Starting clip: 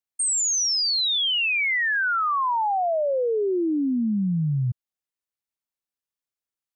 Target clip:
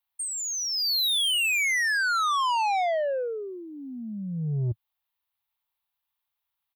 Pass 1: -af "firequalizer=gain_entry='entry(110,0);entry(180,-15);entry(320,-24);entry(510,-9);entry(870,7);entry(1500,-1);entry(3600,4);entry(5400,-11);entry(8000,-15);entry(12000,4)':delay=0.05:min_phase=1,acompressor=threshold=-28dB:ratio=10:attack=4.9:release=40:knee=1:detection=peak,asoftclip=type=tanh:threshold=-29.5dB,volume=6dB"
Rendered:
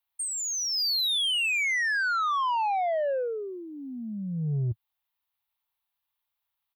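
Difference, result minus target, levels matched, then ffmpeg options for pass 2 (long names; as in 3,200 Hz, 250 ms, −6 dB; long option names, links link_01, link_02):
downward compressor: peak gain reduction +7 dB
-af "firequalizer=gain_entry='entry(110,0);entry(180,-15);entry(320,-24);entry(510,-9);entry(870,7);entry(1500,-1);entry(3600,4);entry(5400,-11);entry(8000,-15);entry(12000,4)':delay=0.05:min_phase=1,acompressor=threshold=-20dB:ratio=10:attack=4.9:release=40:knee=1:detection=peak,asoftclip=type=tanh:threshold=-29.5dB,volume=6dB"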